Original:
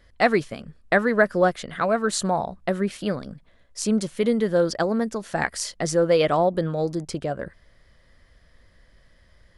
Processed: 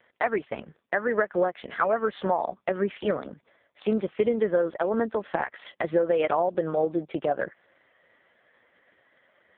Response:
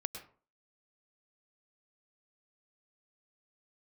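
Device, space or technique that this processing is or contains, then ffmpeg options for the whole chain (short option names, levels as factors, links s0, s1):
voicemail: -af "highpass=340,lowpass=3100,acompressor=threshold=0.0562:ratio=12,volume=2" -ar 8000 -c:a libopencore_amrnb -b:a 4750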